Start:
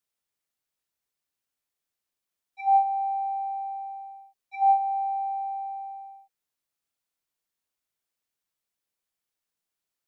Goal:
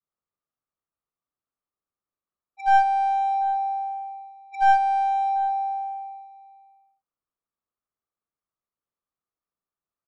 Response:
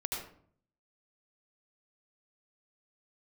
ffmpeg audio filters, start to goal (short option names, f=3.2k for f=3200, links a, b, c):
-filter_complex "[0:a]equalizer=f=1.2k:t=o:w=0.32:g=11.5,adynamicsmooth=sensitivity=5.5:basefreq=1.2k,aeval=exprs='clip(val(0),-1,0.0447)':c=same,adynamicequalizer=threshold=0.0141:dfrequency=680:dqfactor=0.8:tfrequency=680:tqfactor=0.8:attack=5:release=100:ratio=0.375:range=3:mode=boostabove:tftype=bell,asplit=2[a][b];[b]aecho=0:1:740:0.1[c];[a][c]amix=inputs=2:normalize=0,aresample=22050,aresample=44100"